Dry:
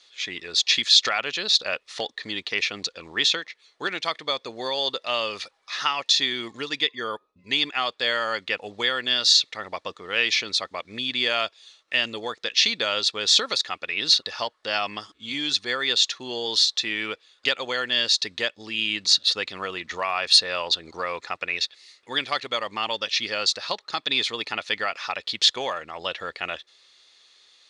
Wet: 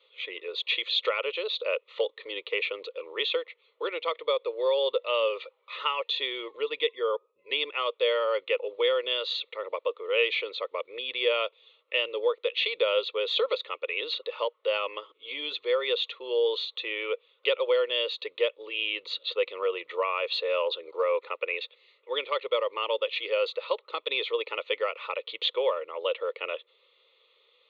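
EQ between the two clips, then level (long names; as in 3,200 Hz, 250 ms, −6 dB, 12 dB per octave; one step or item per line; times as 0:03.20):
high-pass with resonance 490 Hz, resonance Q 4.7
low-pass filter 3,800 Hz 24 dB per octave
phaser with its sweep stopped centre 1,100 Hz, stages 8
−3.5 dB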